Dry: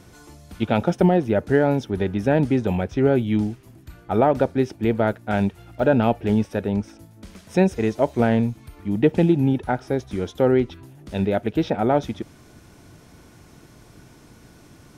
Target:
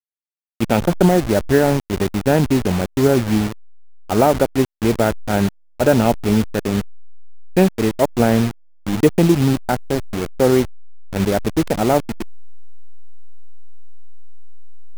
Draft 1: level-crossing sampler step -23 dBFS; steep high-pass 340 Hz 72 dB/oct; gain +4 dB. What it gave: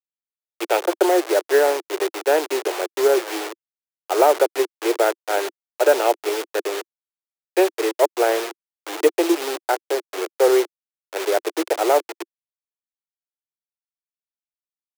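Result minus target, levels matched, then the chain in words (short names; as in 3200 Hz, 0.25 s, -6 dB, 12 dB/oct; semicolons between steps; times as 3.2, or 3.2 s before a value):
250 Hz band -7.5 dB
level-crossing sampler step -23 dBFS; gain +4 dB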